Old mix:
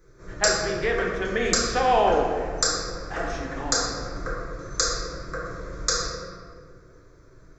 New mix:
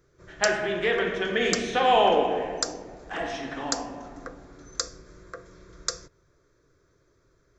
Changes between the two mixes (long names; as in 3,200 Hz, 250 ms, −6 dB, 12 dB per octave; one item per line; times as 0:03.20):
background: send off
master: add parametric band 3,100 Hz +8 dB 0.47 octaves